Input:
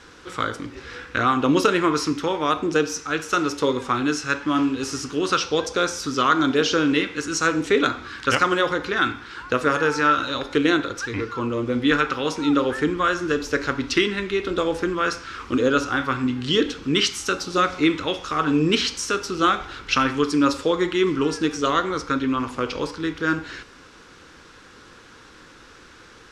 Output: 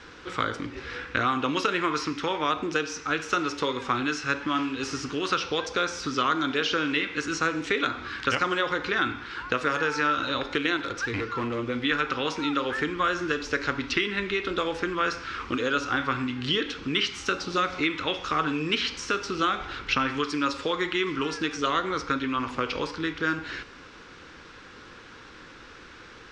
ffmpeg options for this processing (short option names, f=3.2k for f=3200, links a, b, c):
-filter_complex "[0:a]asettb=1/sr,asplit=3[a][b][c];[a]atrim=end=10.774[d];[b]atrim=start=10.77:end=11.59,asetpts=PTS-STARTPTS,afade=t=in:d=0.004:c=qsin,afade=t=out:st=0.816:d=0.004:c=qsin,asoftclip=type=hard:threshold=-22.5dB[e];[c]atrim=start=11.586[f];[d][e]acrossfade=d=0.004:c1=hsin:c2=qsin[g];[g][f]acrossfade=d=0.004:c1=qsin:c2=hsin,lowpass=5.4k,equalizer=f=2.3k:t=o:w=0.77:g=2.5,acrossover=split=890|3600[h][i][j];[h]acompressor=threshold=-29dB:ratio=4[k];[i]acompressor=threshold=-25dB:ratio=4[l];[j]acompressor=threshold=-37dB:ratio=4[m];[k][l][m]amix=inputs=3:normalize=0"